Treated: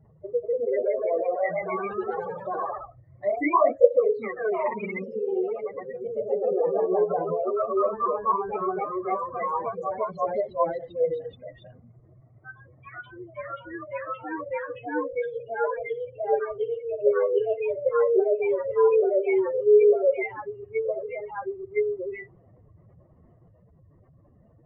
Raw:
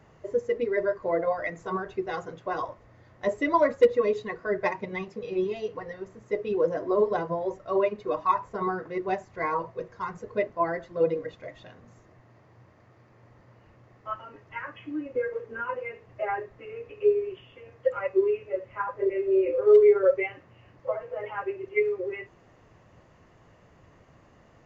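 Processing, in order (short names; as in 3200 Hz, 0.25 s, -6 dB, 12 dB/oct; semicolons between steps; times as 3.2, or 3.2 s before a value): spectral contrast raised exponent 2.6; echoes that change speed 0.208 s, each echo +1 st, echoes 3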